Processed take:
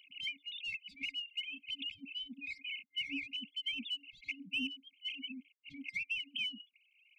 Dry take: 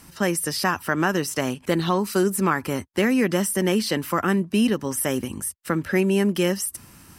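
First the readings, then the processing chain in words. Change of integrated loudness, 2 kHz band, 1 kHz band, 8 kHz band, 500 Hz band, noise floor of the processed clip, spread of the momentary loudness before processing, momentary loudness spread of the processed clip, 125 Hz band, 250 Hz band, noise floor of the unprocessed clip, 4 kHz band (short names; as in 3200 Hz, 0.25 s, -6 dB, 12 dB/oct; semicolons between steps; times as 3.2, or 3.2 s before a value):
-16.5 dB, -12.5 dB, under -40 dB, under -35 dB, under -40 dB, -74 dBFS, 6 LU, 7 LU, under -40 dB, -27.0 dB, -50 dBFS, -4.5 dB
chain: sine-wave speech; differentiator; in parallel at -7 dB: soft clip -40 dBFS, distortion -10 dB; on the sum: spectral noise reduction 10 dB; FFT band-reject 280–2100 Hz; high shelf 2800 Hz -8.5 dB; three-band squash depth 70%; gain +7.5 dB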